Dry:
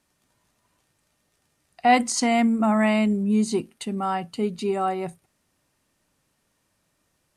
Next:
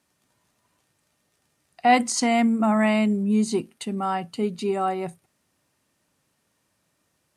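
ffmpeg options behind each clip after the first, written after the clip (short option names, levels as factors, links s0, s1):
-af "highpass=74"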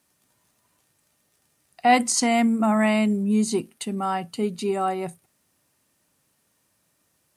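-af "highshelf=f=9500:g=11"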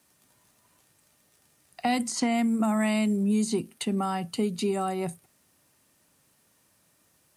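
-filter_complex "[0:a]acrossover=split=240|3800[s0][s1][s2];[s0]acompressor=threshold=0.0282:ratio=4[s3];[s1]acompressor=threshold=0.0251:ratio=4[s4];[s2]acompressor=threshold=0.0112:ratio=4[s5];[s3][s4][s5]amix=inputs=3:normalize=0,volume=1.41"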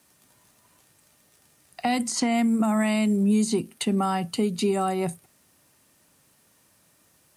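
-af "alimiter=limit=0.126:level=0:latency=1:release=260,volume=1.58"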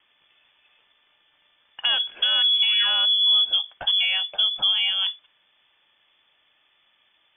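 -af "lowpass=f=3100:t=q:w=0.5098,lowpass=f=3100:t=q:w=0.6013,lowpass=f=3100:t=q:w=0.9,lowpass=f=3100:t=q:w=2.563,afreqshift=-3600,volume=1.26"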